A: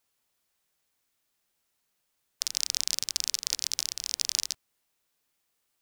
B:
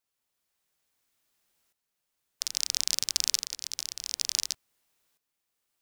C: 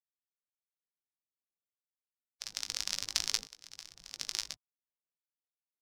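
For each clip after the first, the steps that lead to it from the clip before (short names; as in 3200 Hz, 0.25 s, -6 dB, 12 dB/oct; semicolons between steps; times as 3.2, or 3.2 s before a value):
tremolo saw up 0.58 Hz, depth 75%; gain +3.5 dB
per-bin expansion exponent 2; LPF 1800 Hz 6 dB/oct; doubler 19 ms -9 dB; gain +7 dB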